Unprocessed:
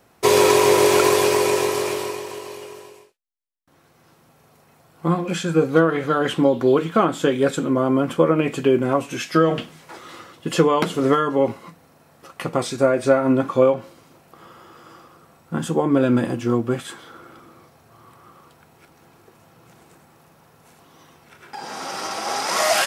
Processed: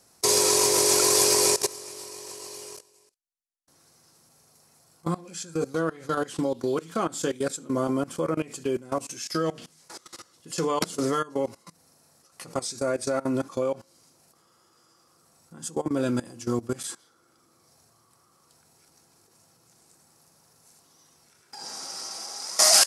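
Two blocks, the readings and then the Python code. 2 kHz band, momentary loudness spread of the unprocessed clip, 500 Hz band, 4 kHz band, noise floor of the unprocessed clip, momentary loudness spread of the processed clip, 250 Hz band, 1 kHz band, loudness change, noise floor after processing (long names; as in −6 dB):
−9.5 dB, 16 LU, −9.5 dB, +1.0 dB, −57 dBFS, 19 LU, −9.5 dB, −9.0 dB, −6.0 dB, −64 dBFS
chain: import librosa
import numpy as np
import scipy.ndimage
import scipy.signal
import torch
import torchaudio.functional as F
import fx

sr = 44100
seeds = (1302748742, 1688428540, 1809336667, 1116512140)

y = fx.level_steps(x, sr, step_db=20)
y = fx.band_shelf(y, sr, hz=7100.0, db=15.5, octaves=1.7)
y = y * 10.0 ** (-5.0 / 20.0)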